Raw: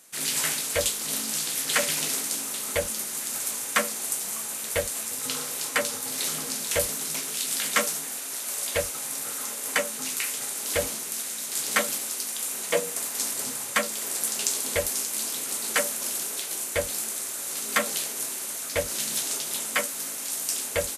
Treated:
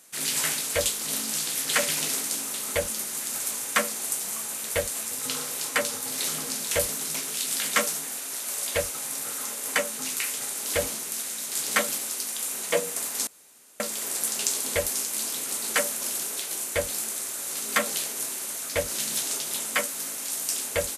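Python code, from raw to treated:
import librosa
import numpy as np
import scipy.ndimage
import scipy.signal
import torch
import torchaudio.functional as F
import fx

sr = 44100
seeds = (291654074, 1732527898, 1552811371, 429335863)

y = fx.edit(x, sr, fx.room_tone_fill(start_s=13.27, length_s=0.53), tone=tone)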